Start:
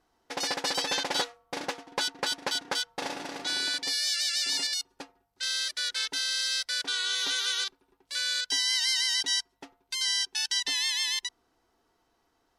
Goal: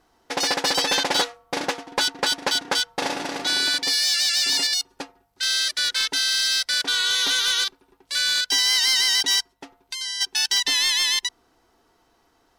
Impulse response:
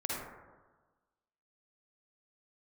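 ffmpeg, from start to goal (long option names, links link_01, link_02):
-filter_complex "[0:a]asplit=3[link_01][link_02][link_03];[link_01]afade=type=out:start_time=9.52:duration=0.02[link_04];[link_02]acompressor=threshold=-44dB:ratio=2,afade=type=in:start_time=9.52:duration=0.02,afade=type=out:start_time=10.2:duration=0.02[link_05];[link_03]afade=type=in:start_time=10.2:duration=0.02[link_06];[link_04][link_05][link_06]amix=inputs=3:normalize=0,aeval=exprs='0.224*sin(PI/2*1.78*val(0)/0.224)':channel_layout=same"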